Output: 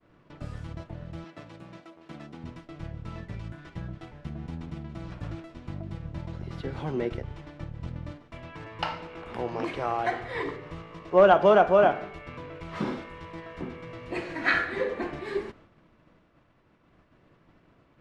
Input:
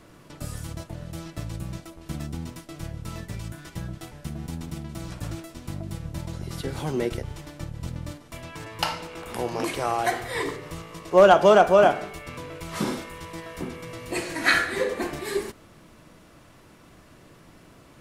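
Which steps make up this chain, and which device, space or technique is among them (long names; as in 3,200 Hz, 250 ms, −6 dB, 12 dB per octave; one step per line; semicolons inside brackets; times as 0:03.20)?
hearing-loss simulation (low-pass filter 2,800 Hz 12 dB per octave; downward expander −45 dBFS)
0:01.24–0:02.44: Bessel high-pass filter 310 Hz, order 2
level −3 dB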